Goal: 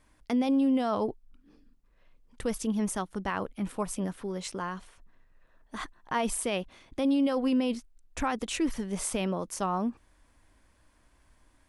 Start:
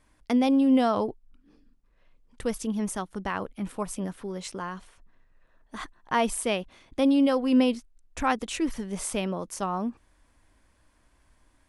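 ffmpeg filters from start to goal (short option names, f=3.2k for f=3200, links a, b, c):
-af "alimiter=limit=-19.5dB:level=0:latency=1:release=17"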